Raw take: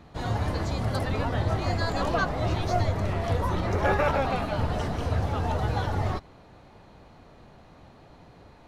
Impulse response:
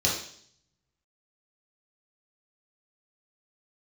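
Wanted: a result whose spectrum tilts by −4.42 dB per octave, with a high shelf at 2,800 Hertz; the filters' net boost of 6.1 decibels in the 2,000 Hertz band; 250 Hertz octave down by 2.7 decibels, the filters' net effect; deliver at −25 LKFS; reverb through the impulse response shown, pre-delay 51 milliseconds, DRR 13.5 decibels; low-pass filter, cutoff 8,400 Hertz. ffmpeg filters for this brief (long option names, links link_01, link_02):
-filter_complex "[0:a]lowpass=8400,equalizer=frequency=250:width_type=o:gain=-4,equalizer=frequency=2000:width_type=o:gain=7,highshelf=frequency=2800:gain=3,asplit=2[link_01][link_02];[1:a]atrim=start_sample=2205,adelay=51[link_03];[link_02][link_03]afir=irnorm=-1:irlink=0,volume=-25dB[link_04];[link_01][link_04]amix=inputs=2:normalize=0,volume=1dB"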